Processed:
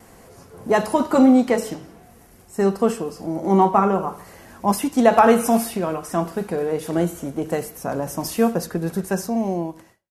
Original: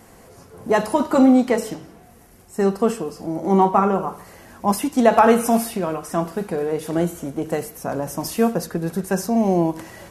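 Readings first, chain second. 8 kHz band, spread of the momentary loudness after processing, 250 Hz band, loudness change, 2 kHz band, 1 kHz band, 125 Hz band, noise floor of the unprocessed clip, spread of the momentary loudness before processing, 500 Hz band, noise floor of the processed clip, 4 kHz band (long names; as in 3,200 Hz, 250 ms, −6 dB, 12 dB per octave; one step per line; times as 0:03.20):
0.0 dB, 14 LU, −0.5 dB, −0.5 dB, 0.0 dB, 0.0 dB, −0.5 dB, −48 dBFS, 13 LU, 0.0 dB, −49 dBFS, 0.0 dB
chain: fade-out on the ending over 1.13 s
noise gate with hold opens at −42 dBFS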